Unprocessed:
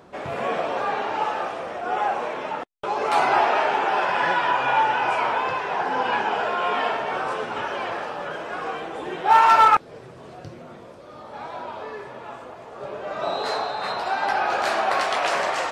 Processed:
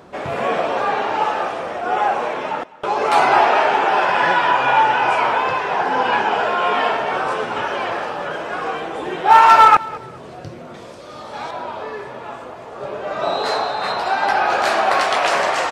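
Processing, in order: 10.74–11.51 bell 6100 Hz +9 dB 2.5 oct; feedback echo 0.206 s, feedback 28%, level -20 dB; gain +5.5 dB

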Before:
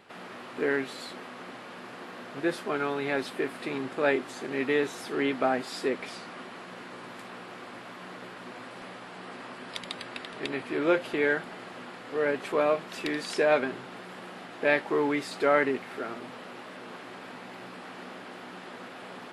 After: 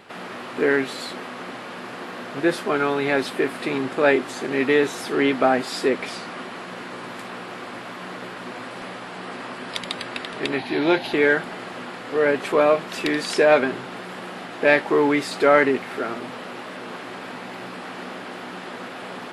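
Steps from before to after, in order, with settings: 10.58–11.13 thirty-one-band EQ 500 Hz -10 dB, 800 Hz +8 dB, 1250 Hz -10 dB, 4000 Hz +10 dB, 8000 Hz -11 dB; in parallel at -10 dB: soft clip -21 dBFS, distortion -13 dB; on the sum: gain +6 dB

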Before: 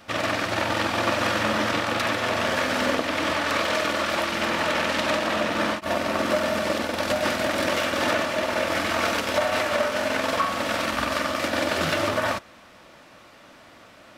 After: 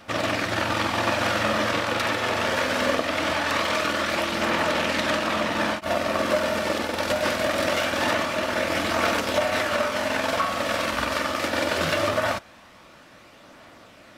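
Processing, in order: phaser 0.22 Hz, delay 2.4 ms, feedback 20%

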